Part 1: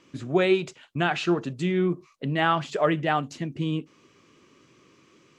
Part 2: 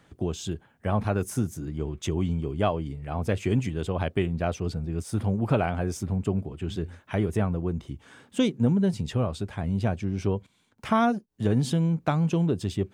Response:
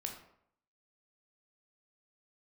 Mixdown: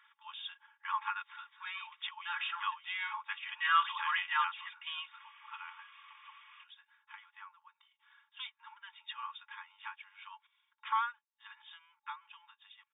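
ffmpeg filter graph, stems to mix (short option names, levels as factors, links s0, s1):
-filter_complex "[0:a]asoftclip=type=tanh:threshold=0.224,adelay=1250,volume=0.596[s0];[1:a]volume=2.24,afade=t=out:st=1.87:d=0.51:silence=0.354813,afade=t=out:st=4.78:d=0.54:silence=0.251189,afade=t=in:st=8.26:d=0.72:silence=0.354813,asplit=2[s1][s2];[s2]apad=whole_len=292642[s3];[s0][s3]sidechaincompress=threshold=0.00708:ratio=4:attack=25:release=349[s4];[s4][s1]amix=inputs=2:normalize=0,afftfilt=real='re*between(b*sr/4096,860,3700)':imag='im*between(b*sr/4096,860,3700)':win_size=4096:overlap=0.75,aecho=1:1:3.6:0.69,dynaudnorm=f=430:g=13:m=2.99"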